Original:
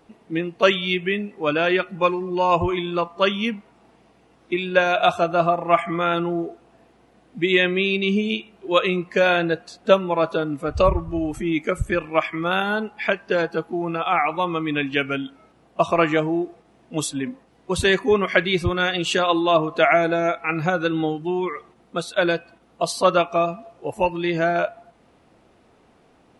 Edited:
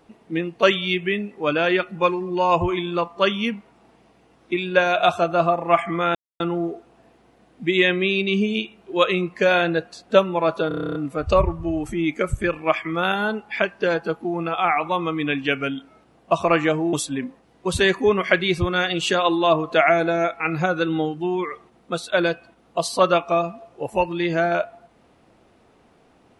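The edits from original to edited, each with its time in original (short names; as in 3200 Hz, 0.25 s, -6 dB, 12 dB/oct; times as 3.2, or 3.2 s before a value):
6.15 insert silence 0.25 s
10.43 stutter 0.03 s, 10 plays
16.41–16.97 cut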